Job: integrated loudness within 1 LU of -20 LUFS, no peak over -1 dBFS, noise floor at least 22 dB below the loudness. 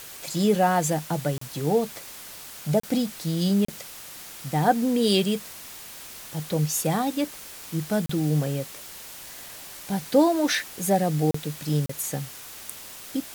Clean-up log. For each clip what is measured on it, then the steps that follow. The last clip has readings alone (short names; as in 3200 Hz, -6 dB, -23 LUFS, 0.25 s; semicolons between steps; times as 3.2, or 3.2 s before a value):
dropouts 6; longest dropout 34 ms; noise floor -42 dBFS; noise floor target -47 dBFS; loudness -25.0 LUFS; peak -8.5 dBFS; loudness target -20.0 LUFS
-> interpolate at 1.38/2.8/3.65/8.06/11.31/11.86, 34 ms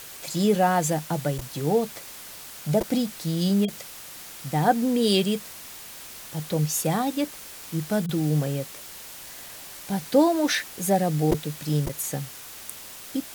dropouts 0; noise floor -42 dBFS; noise floor target -47 dBFS
-> noise print and reduce 6 dB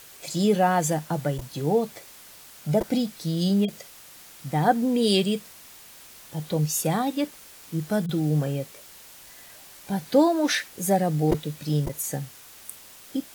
noise floor -48 dBFS; loudness -25.0 LUFS; peak -8.5 dBFS; loudness target -20.0 LUFS
-> gain +5 dB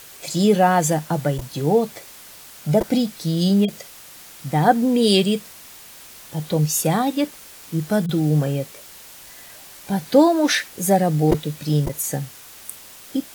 loudness -20.0 LUFS; peak -3.5 dBFS; noise floor -43 dBFS